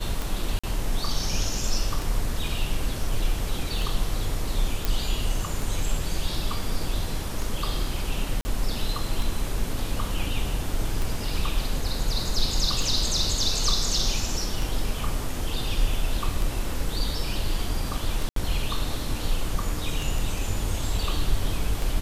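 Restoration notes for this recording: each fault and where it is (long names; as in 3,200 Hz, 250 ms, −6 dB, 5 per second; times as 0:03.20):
scratch tick 33 1/3 rpm
0:00.59–0:00.64: drop-out 45 ms
0:04.85: click
0:08.41–0:08.45: drop-out 40 ms
0:18.29–0:18.36: drop-out 73 ms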